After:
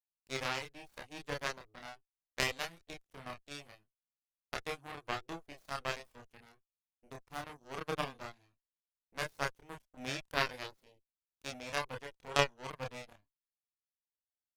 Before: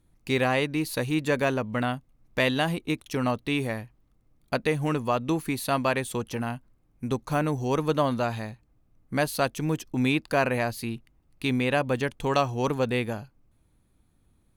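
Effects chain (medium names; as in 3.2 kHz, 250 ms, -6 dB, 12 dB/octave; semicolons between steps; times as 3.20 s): Chebyshev shaper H 2 -17 dB, 3 -9 dB, 5 -38 dB, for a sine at -9.5 dBFS; chorus voices 6, 0.17 Hz, delay 29 ms, depth 1.5 ms; trim +2 dB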